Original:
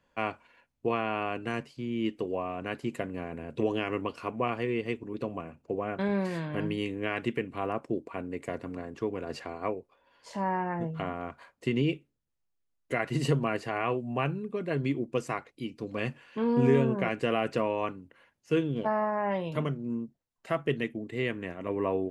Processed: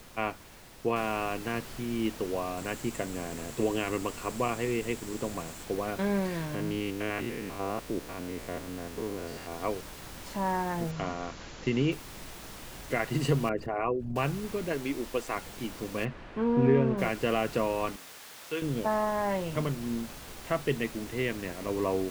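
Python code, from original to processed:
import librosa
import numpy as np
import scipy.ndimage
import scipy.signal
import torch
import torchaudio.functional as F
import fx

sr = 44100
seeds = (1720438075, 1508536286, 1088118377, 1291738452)

y = fx.noise_floor_step(x, sr, seeds[0], at_s=0.96, before_db=-51, after_db=-44, tilt_db=3.0)
y = fx.peak_eq(y, sr, hz=7600.0, db=9.5, octaves=0.31, at=(2.57, 5.64))
y = fx.spec_steps(y, sr, hold_ms=100, at=(6.54, 9.5), fade=0.02)
y = fx.brickwall_lowpass(y, sr, high_hz=7400.0, at=(10.9, 11.91), fade=0.02)
y = fx.envelope_sharpen(y, sr, power=2.0, at=(13.49, 14.16))
y = fx.peak_eq(y, sr, hz=130.0, db=-13.0, octaves=1.1, at=(14.72, 15.35))
y = fx.lowpass(y, sr, hz=2300.0, slope=12, at=(16.04, 16.97), fade=0.02)
y = fx.highpass(y, sr, hz=980.0, slope=6, at=(17.96, 18.62))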